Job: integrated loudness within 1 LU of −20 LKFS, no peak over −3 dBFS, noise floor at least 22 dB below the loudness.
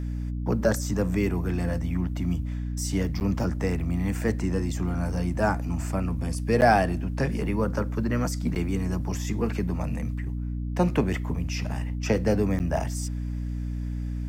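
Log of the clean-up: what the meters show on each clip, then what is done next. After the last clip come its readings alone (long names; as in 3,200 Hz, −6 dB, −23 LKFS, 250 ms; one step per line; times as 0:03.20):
number of dropouts 4; longest dropout 9.3 ms; mains hum 60 Hz; hum harmonics up to 300 Hz; level of the hum −28 dBFS; integrated loudness −27.5 LKFS; sample peak −8.0 dBFS; target loudness −20.0 LKFS
→ repair the gap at 0:03.20/0:06.61/0:08.55/0:12.59, 9.3 ms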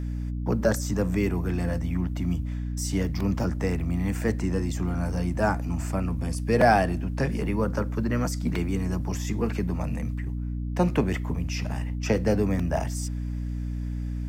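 number of dropouts 0; mains hum 60 Hz; hum harmonics up to 300 Hz; level of the hum −28 dBFS
→ mains-hum notches 60/120/180/240/300 Hz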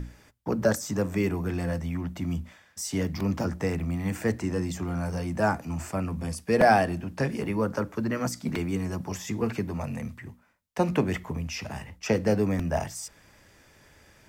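mains hum none found; integrated loudness −28.5 LKFS; sample peak −7.5 dBFS; target loudness −20.0 LKFS
→ level +8.5 dB
brickwall limiter −3 dBFS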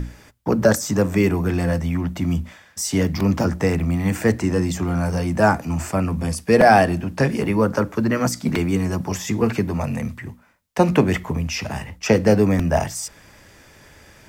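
integrated loudness −20.5 LKFS; sample peak −3.0 dBFS; background noise floor −50 dBFS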